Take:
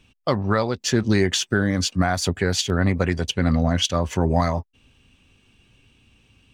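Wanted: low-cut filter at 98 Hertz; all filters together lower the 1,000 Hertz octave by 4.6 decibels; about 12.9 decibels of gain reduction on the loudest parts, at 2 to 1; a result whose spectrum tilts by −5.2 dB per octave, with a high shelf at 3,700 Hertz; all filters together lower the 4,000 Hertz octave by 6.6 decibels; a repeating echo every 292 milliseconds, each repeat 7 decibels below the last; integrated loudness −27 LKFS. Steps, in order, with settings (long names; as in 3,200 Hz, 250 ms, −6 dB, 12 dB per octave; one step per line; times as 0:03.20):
high-pass filter 98 Hz
parametric band 1,000 Hz −6 dB
high-shelf EQ 3,700 Hz −5 dB
parametric band 4,000 Hz −5 dB
downward compressor 2 to 1, threshold −40 dBFS
repeating echo 292 ms, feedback 45%, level −7 dB
level +8 dB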